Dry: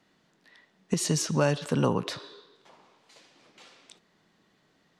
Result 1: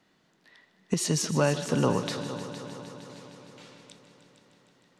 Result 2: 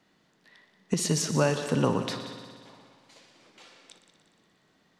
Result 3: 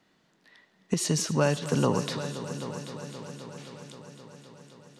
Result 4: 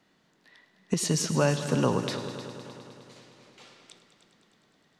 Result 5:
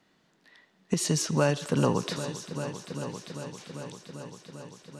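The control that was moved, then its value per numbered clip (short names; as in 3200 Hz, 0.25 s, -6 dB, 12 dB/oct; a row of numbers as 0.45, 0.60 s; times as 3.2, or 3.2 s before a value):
multi-head echo, time: 154, 60, 262, 103, 395 ms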